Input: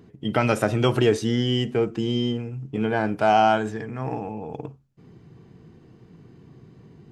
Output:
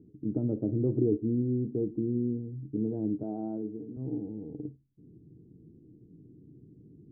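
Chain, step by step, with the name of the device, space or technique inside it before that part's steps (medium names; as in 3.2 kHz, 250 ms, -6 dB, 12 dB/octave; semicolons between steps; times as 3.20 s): 3.23–3.97 s: Bessel high-pass 210 Hz, order 2; under water (low-pass 400 Hz 24 dB/octave; peaking EQ 300 Hz +9.5 dB 0.29 oct); trim -6.5 dB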